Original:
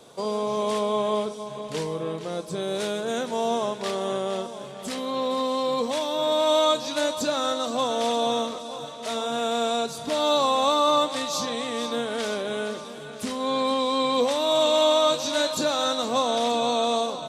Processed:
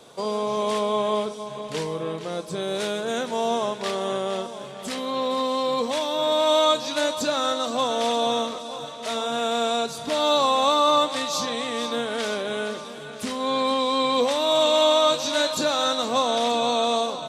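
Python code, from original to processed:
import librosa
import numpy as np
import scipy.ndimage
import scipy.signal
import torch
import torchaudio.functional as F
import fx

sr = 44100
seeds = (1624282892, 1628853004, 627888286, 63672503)

y = fx.peak_eq(x, sr, hz=2100.0, db=3.0, octaves=2.6)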